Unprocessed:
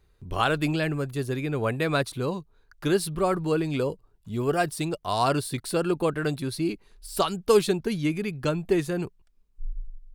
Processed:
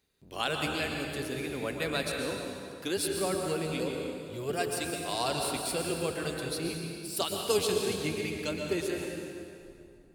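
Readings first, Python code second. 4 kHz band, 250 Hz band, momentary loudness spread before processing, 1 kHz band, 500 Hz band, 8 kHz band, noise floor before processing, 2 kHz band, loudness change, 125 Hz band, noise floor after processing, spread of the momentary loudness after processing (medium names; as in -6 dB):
+0.5 dB, -7.5 dB, 11 LU, -7.5 dB, -6.0 dB, +2.0 dB, -64 dBFS, -3.5 dB, -5.5 dB, -10.0 dB, -54 dBFS, 8 LU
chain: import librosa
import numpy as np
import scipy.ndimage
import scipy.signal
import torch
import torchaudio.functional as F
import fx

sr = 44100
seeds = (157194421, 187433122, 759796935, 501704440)

y = fx.octave_divider(x, sr, octaves=1, level_db=1.0)
y = fx.highpass(y, sr, hz=910.0, slope=6)
y = fx.peak_eq(y, sr, hz=1200.0, db=-9.5, octaves=1.3)
y = fx.rev_plate(y, sr, seeds[0], rt60_s=2.4, hf_ratio=0.8, predelay_ms=105, drr_db=1.0)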